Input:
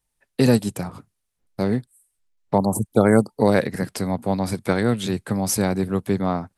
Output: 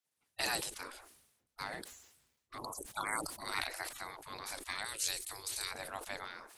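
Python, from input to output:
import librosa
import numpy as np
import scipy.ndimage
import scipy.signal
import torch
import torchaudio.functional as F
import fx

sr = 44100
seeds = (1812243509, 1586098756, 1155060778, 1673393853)

y = fx.spec_gate(x, sr, threshold_db=-20, keep='weak')
y = fx.curve_eq(y, sr, hz=(110.0, 200.0, 380.0, 670.0, 2100.0, 6200.0), db=(0, -20, -2, -11, -5, 9), at=(4.85, 5.71))
y = fx.sustainer(y, sr, db_per_s=62.0)
y = y * 10.0 ** (-5.0 / 20.0)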